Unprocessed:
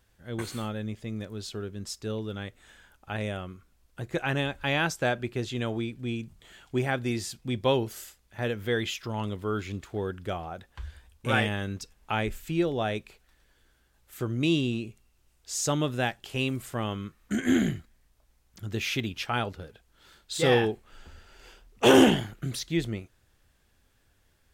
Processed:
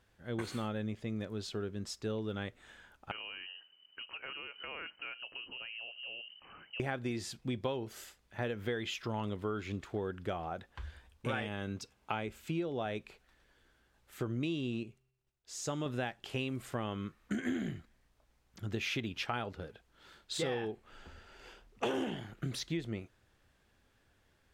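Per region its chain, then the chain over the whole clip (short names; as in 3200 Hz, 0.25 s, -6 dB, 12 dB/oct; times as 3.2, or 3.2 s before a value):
3.11–6.8 compressor 4:1, threshold -42 dBFS + inverted band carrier 3000 Hz
11.42–12.86 HPF 69 Hz + notch 1800 Hz, Q 10
14.83–15.86 expander -58 dBFS + resonator 130 Hz, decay 1.1 s, harmonics odd, mix 50%
whole clip: LPF 3500 Hz 6 dB/oct; low shelf 84 Hz -8.5 dB; compressor 10:1, threshold -32 dBFS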